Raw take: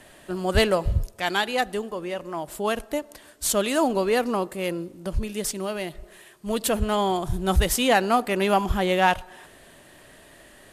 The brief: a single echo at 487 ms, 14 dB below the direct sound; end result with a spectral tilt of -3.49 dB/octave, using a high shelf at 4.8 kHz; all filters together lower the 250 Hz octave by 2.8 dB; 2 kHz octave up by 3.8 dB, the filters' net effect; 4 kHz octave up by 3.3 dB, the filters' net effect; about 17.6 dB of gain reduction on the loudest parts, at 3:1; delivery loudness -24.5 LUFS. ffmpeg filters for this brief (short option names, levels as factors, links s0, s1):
-af "equalizer=f=250:t=o:g=-4,equalizer=f=2000:t=o:g=4.5,equalizer=f=4000:t=o:g=4,highshelf=f=4800:g=-3.5,acompressor=threshold=0.0112:ratio=3,aecho=1:1:487:0.2,volume=5.31"